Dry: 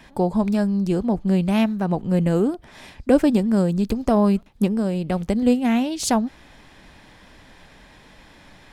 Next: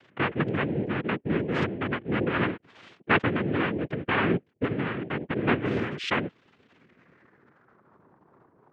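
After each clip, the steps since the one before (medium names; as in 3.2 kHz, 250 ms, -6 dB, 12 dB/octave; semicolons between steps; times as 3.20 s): resonances exaggerated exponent 2; noise-vocoded speech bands 3; low-pass sweep 3 kHz -> 1 kHz, 6.63–8.09 s; trim -8 dB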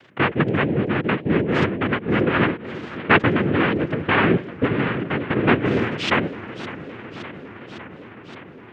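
modulated delay 562 ms, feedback 75%, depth 194 cents, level -15.5 dB; trim +7 dB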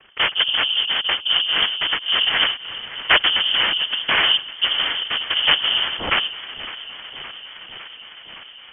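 frequency inversion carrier 3.3 kHz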